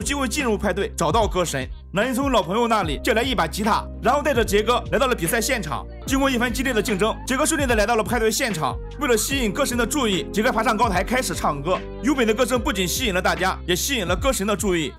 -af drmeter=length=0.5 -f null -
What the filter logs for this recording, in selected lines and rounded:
Channel 1: DR: 10.2
Overall DR: 10.2